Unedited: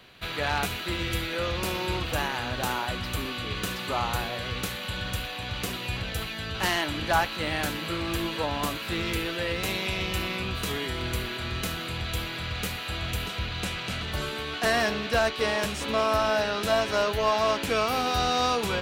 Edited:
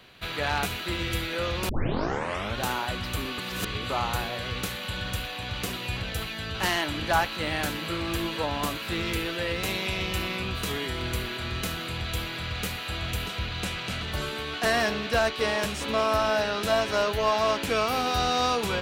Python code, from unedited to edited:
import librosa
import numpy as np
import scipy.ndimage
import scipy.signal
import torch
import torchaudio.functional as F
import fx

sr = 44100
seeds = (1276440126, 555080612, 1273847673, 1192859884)

y = fx.edit(x, sr, fx.tape_start(start_s=1.69, length_s=0.91),
    fx.reverse_span(start_s=3.38, length_s=0.52), tone=tone)